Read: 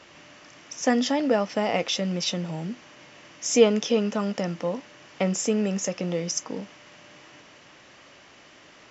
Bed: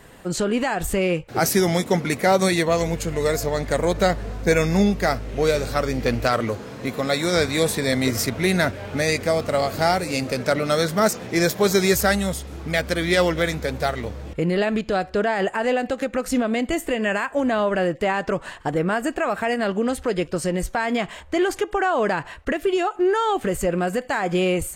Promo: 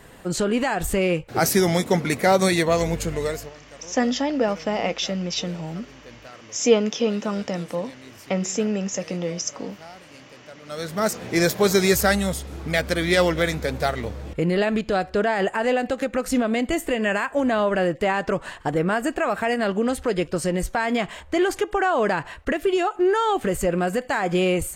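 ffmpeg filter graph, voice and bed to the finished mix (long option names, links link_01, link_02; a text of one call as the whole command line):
ffmpeg -i stem1.wav -i stem2.wav -filter_complex "[0:a]adelay=3100,volume=0.5dB[link_01];[1:a]volume=23.5dB,afade=type=out:start_time=3.06:duration=0.48:silence=0.0668344,afade=type=in:start_time=10.62:duration=0.69:silence=0.0668344[link_02];[link_01][link_02]amix=inputs=2:normalize=0" out.wav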